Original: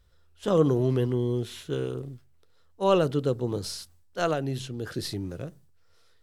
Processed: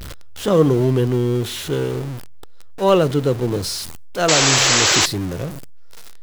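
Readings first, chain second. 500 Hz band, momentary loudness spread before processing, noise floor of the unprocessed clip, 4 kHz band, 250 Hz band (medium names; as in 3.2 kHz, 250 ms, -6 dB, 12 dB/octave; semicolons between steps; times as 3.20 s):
+8.0 dB, 15 LU, -59 dBFS, +19.5 dB, +8.0 dB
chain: jump at every zero crossing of -33 dBFS; painted sound noise, 4.28–5.06 s, 290–7900 Hz -22 dBFS; trim +6.5 dB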